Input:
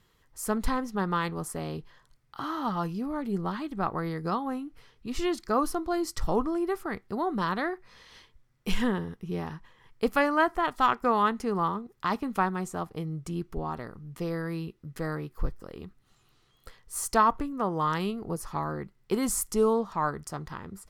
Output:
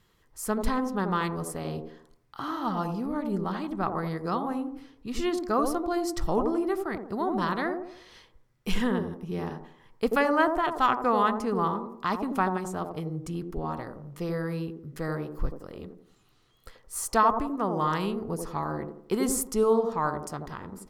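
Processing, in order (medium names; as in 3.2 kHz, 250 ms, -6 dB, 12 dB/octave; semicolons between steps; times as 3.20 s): feedback echo behind a band-pass 86 ms, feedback 39%, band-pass 420 Hz, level -3 dB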